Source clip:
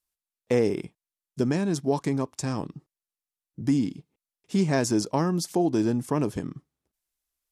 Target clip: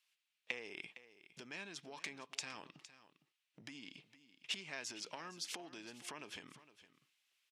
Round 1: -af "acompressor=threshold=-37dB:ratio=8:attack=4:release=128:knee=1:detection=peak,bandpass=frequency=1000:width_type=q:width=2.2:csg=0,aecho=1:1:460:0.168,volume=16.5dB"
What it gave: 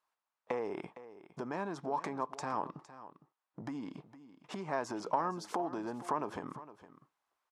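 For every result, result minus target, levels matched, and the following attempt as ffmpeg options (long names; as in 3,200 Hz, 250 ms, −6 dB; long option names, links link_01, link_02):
1,000 Hz band +10.5 dB; downward compressor: peak gain reduction −5 dB
-af "acompressor=threshold=-37dB:ratio=8:attack=4:release=128:knee=1:detection=peak,bandpass=frequency=2700:width_type=q:width=2.2:csg=0,aecho=1:1:460:0.168,volume=16.5dB"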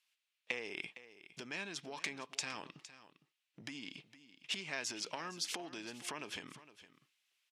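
downward compressor: peak gain reduction −5 dB
-af "acompressor=threshold=-43dB:ratio=8:attack=4:release=128:knee=1:detection=peak,bandpass=frequency=2700:width_type=q:width=2.2:csg=0,aecho=1:1:460:0.168,volume=16.5dB"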